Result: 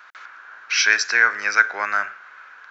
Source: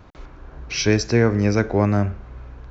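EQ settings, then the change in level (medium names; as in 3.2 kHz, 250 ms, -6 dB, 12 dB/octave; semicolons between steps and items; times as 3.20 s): resonant high-pass 1.5 kHz, resonance Q 4.2; +3.5 dB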